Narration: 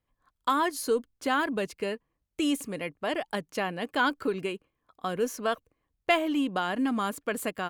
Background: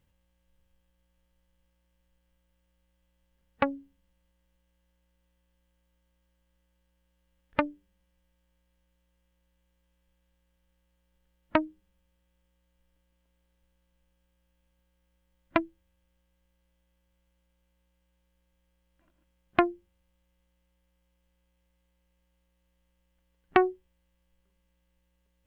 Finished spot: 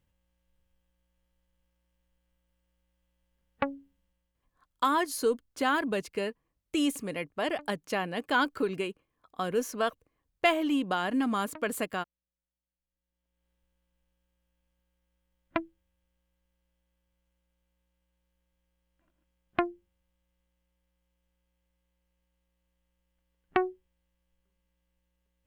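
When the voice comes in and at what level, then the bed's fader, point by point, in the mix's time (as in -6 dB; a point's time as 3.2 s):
4.35 s, -0.5 dB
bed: 4.03 s -3.5 dB
4.98 s -22.5 dB
12.79 s -22.5 dB
13.48 s -5 dB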